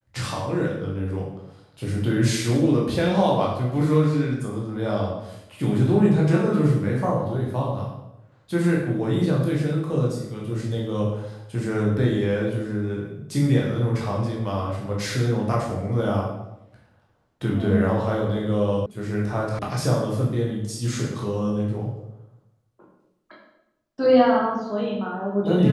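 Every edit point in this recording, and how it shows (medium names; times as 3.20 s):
18.86 s: sound stops dead
19.59 s: sound stops dead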